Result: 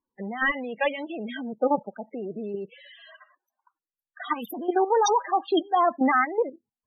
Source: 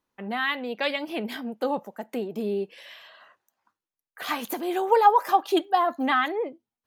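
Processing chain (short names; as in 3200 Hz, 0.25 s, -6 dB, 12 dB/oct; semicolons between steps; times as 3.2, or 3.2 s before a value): level quantiser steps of 13 dB; wrapped overs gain 17.5 dB; loudest bins only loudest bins 16; gain +6.5 dB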